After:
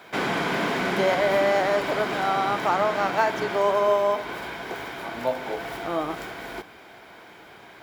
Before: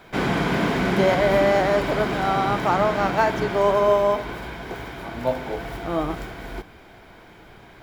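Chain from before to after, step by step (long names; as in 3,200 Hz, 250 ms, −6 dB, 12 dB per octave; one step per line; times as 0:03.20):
high-pass filter 430 Hz 6 dB per octave
in parallel at −2 dB: downward compressor, threshold −30 dBFS, peak gain reduction 14 dB
on the sum: level −2.5 dB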